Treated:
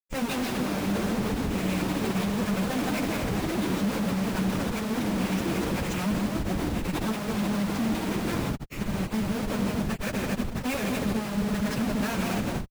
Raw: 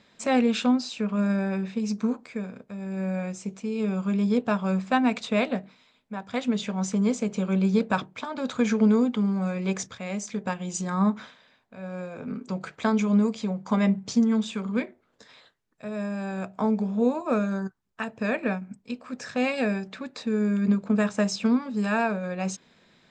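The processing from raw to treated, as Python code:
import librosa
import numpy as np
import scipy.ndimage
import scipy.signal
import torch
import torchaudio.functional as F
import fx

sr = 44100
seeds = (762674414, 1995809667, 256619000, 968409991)

y = fx.rattle_buzz(x, sr, strikes_db=-35.0, level_db=-27.0)
y = fx.peak_eq(y, sr, hz=2500.0, db=11.0, octaves=2.4)
y = fx.echo_heads(y, sr, ms=146, heads='second and third', feedback_pct=48, wet_db=-6.5)
y = fx.echo_pitch(y, sr, ms=443, semitones=7, count=3, db_per_echo=-6.0)
y = fx.spec_box(y, sr, start_s=1.73, length_s=0.66, low_hz=380.0, high_hz=2100.0, gain_db=8)
y = fx.schmitt(y, sr, flips_db=-23.0)
y = fx.stretch_vocoder_free(y, sr, factor=0.55)
y = fx.peak_eq(y, sr, hz=180.0, db=4.5, octaves=1.8)
y = y * librosa.db_to_amplitude(-5.0)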